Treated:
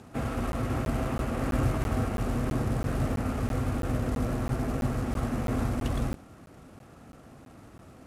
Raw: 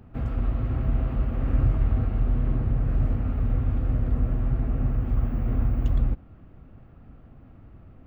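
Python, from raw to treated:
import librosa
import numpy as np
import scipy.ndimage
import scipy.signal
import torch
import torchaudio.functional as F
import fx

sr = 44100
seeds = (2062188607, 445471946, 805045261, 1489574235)

y = fx.cvsd(x, sr, bps=64000)
y = fx.highpass(y, sr, hz=380.0, slope=6)
y = fx.buffer_crackle(y, sr, first_s=0.52, period_s=0.33, block=512, kind='zero')
y = y * librosa.db_to_amplitude(8.0)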